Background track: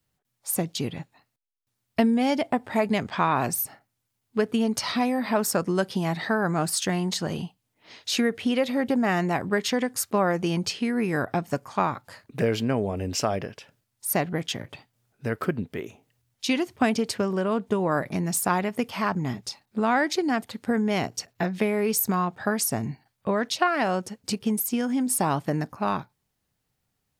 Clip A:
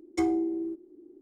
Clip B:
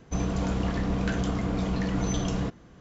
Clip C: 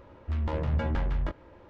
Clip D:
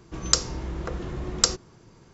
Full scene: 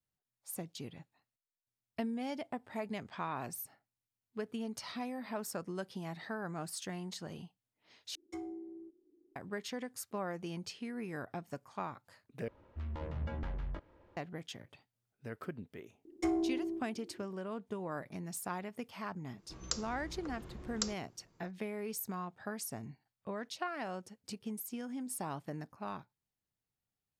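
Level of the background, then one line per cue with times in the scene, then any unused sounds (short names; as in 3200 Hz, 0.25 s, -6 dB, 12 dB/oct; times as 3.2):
background track -16 dB
8.15 replace with A -17 dB
12.48 replace with C -11 dB
16.05 add A -4.5 dB + one diode to ground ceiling -20.5 dBFS
19.38 add D -16 dB
not used: B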